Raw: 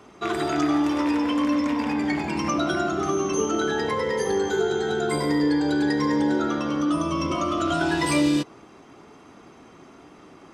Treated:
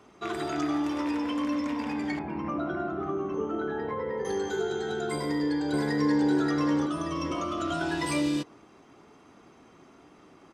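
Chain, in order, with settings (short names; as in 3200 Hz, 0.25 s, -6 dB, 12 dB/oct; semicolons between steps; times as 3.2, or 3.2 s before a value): 2.19–4.25 LPF 1500 Hz 12 dB/oct; 5.15–6.28 echo throw 0.58 s, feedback 30%, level -1 dB; gain -6.5 dB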